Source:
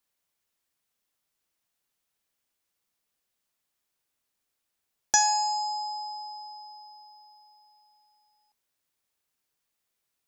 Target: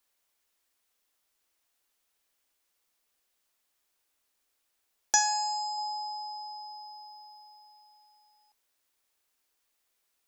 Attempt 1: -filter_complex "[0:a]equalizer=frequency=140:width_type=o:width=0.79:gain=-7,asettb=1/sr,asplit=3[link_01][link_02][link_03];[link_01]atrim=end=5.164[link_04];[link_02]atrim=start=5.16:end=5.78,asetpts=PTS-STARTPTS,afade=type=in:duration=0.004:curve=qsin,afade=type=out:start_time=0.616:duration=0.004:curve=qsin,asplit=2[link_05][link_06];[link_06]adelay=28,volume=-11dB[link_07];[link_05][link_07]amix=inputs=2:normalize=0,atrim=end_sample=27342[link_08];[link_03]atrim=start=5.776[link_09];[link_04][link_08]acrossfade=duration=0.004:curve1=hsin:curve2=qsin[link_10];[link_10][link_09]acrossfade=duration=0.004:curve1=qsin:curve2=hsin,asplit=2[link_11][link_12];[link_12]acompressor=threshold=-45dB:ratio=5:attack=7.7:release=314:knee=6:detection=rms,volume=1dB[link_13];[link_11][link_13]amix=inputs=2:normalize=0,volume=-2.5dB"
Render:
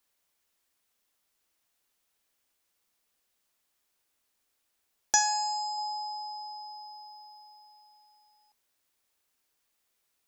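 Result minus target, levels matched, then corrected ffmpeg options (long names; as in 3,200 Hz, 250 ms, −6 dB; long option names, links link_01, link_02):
125 Hz band +4.5 dB
-filter_complex "[0:a]equalizer=frequency=140:width_type=o:width=0.79:gain=-17.5,asettb=1/sr,asplit=3[link_01][link_02][link_03];[link_01]atrim=end=5.164[link_04];[link_02]atrim=start=5.16:end=5.78,asetpts=PTS-STARTPTS,afade=type=in:duration=0.004:curve=qsin,afade=type=out:start_time=0.616:duration=0.004:curve=qsin,asplit=2[link_05][link_06];[link_06]adelay=28,volume=-11dB[link_07];[link_05][link_07]amix=inputs=2:normalize=0,atrim=end_sample=27342[link_08];[link_03]atrim=start=5.776[link_09];[link_04][link_08]acrossfade=duration=0.004:curve1=hsin:curve2=qsin[link_10];[link_10][link_09]acrossfade=duration=0.004:curve1=qsin:curve2=hsin,asplit=2[link_11][link_12];[link_12]acompressor=threshold=-45dB:ratio=5:attack=7.7:release=314:knee=6:detection=rms,volume=1dB[link_13];[link_11][link_13]amix=inputs=2:normalize=0,volume=-2.5dB"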